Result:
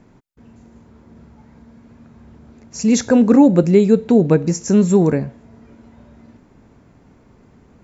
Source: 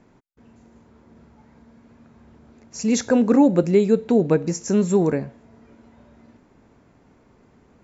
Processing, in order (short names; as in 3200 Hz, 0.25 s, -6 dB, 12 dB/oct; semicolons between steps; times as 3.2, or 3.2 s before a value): tone controls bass +5 dB, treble +1 dB; gain +3 dB